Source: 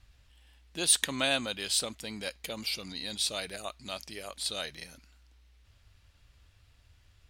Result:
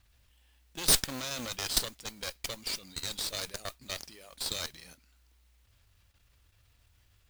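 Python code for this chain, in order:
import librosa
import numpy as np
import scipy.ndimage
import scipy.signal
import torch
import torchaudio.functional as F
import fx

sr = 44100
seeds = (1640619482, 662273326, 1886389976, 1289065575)

y = fx.level_steps(x, sr, step_db=13)
y = fx.cheby_harmonics(y, sr, harmonics=(6,), levels_db=(-7,), full_scale_db=-14.5)
y = fx.dynamic_eq(y, sr, hz=5500.0, q=1.3, threshold_db=-52.0, ratio=4.0, max_db=6)
y = fx.mod_noise(y, sr, seeds[0], snr_db=11)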